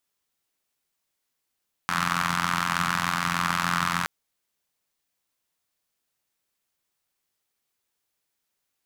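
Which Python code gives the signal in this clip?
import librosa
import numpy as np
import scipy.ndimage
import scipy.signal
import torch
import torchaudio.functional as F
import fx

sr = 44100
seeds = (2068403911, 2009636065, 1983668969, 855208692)

y = fx.engine_four(sr, seeds[0], length_s=2.17, rpm=2600, resonances_hz=(170.0, 1200.0))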